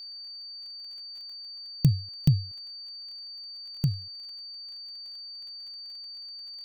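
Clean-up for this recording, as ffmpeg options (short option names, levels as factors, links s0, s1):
-af "adeclick=t=4,bandreject=f=4600:w=30,afftdn=nr=30:nf=-42"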